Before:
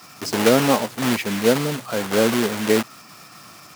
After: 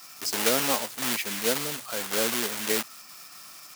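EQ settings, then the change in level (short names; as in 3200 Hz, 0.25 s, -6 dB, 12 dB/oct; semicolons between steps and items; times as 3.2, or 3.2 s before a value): tilt +3 dB/oct; -8.0 dB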